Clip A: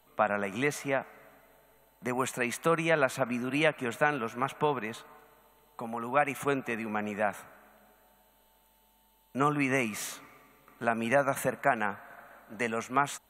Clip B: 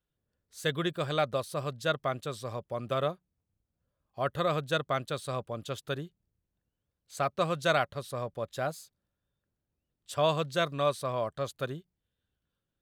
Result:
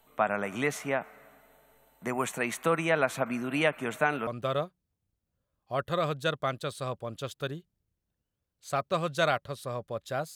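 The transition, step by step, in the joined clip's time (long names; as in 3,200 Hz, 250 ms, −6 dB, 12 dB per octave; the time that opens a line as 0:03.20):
clip A
0:04.27: continue with clip B from 0:02.74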